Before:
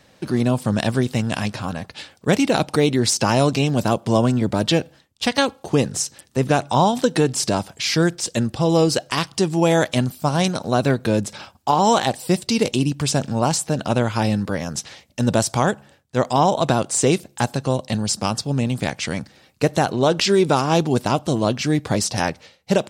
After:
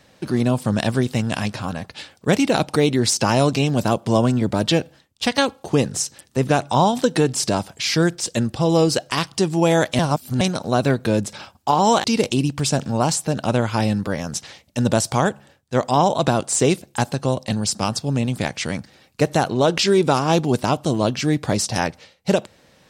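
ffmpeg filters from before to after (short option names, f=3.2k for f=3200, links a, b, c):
-filter_complex "[0:a]asplit=4[a][b][c][d];[a]atrim=end=9.992[e];[b]atrim=start=9.988:end=10.412,asetpts=PTS-STARTPTS,areverse[f];[c]atrim=start=10.408:end=12.042[g];[d]atrim=start=12.458[h];[e][f]acrossfade=d=0.004:c1=hsin:c2=hsin[i];[i][g]acrossfade=d=0.004:c1=hsin:c2=hsin[j];[j][h]acrossfade=d=0.004:c1=hsin:c2=hsin"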